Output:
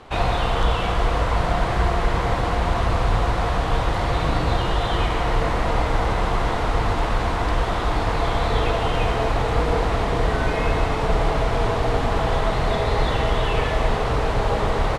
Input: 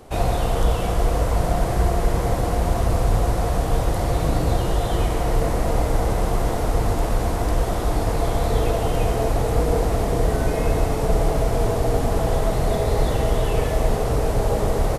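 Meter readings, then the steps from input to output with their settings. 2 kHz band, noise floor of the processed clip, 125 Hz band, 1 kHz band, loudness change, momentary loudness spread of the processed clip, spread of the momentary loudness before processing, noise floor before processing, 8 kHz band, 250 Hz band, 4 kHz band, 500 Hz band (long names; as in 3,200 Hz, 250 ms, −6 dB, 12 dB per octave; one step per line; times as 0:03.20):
+7.0 dB, −24 dBFS, −1.5 dB, +3.5 dB, 0.0 dB, 1 LU, 2 LU, −24 dBFS, −6.5 dB, −1.5 dB, +5.5 dB, −1.0 dB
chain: low-pass filter 6,400 Hz 12 dB per octave
flat-topped bell 1,900 Hz +8.5 dB 2.5 octaves
level −1.5 dB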